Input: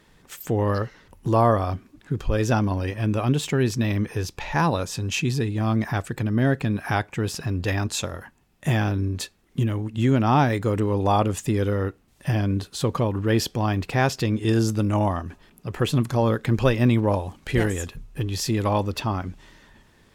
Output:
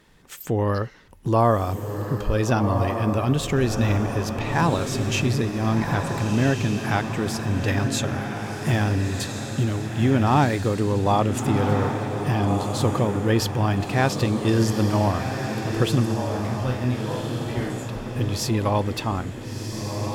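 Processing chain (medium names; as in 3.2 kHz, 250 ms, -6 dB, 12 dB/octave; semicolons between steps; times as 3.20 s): 16.05–17.89 s: feedback comb 63 Hz, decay 0.39 s, harmonics all, mix 100%; echo that smears into a reverb 1434 ms, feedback 46%, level -5 dB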